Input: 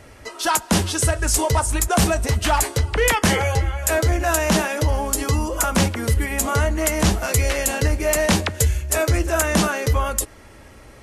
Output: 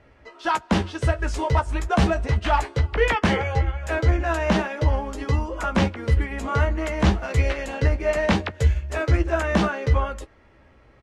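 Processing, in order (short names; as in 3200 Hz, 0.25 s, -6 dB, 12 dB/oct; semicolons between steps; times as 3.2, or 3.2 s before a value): LPF 3000 Hz 12 dB/oct; doubler 15 ms -9 dB; upward expander 1.5:1, over -32 dBFS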